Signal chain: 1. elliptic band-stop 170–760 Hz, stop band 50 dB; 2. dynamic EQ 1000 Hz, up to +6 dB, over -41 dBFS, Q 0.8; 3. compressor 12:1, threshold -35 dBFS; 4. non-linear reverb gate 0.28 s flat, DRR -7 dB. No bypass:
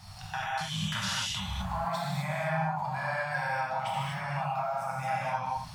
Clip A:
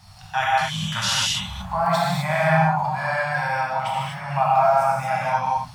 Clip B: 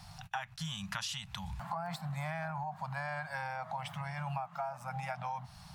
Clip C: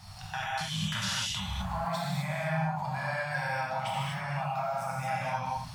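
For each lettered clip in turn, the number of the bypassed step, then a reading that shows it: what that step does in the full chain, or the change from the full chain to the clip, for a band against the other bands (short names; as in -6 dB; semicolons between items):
3, mean gain reduction 7.0 dB; 4, crest factor change +5.0 dB; 2, 1 kHz band -2.0 dB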